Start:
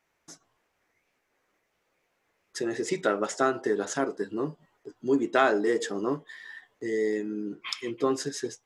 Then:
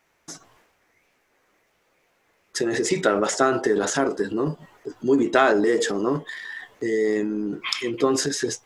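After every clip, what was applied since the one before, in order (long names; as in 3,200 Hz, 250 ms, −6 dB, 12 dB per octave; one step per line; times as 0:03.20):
in parallel at −1.5 dB: downward compressor, threshold −35 dBFS, peak gain reduction 17 dB
on the sum: transient designer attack +2 dB, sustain +8 dB
level +2.5 dB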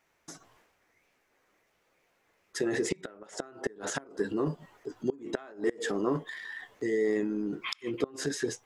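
dynamic equaliser 5,600 Hz, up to −5 dB, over −43 dBFS, Q 0.88
gate with flip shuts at −11 dBFS, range −25 dB
level −5.5 dB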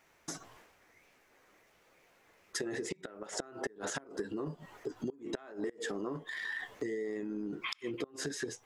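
downward compressor 12 to 1, threshold −40 dBFS, peak gain reduction 17.5 dB
level +5.5 dB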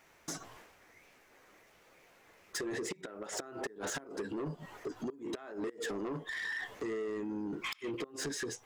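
soft clipping −36 dBFS, distortion −11 dB
level +3.5 dB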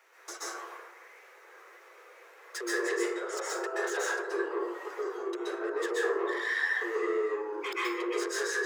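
Chebyshev high-pass with heavy ripple 340 Hz, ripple 6 dB
dense smooth reverb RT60 0.89 s, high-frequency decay 0.4×, pre-delay 115 ms, DRR −7.5 dB
level +3.5 dB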